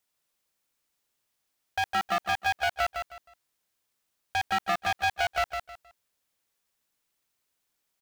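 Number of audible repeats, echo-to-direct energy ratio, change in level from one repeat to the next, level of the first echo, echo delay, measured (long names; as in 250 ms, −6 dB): 3, −5.5 dB, −11.5 dB, −6.0 dB, 157 ms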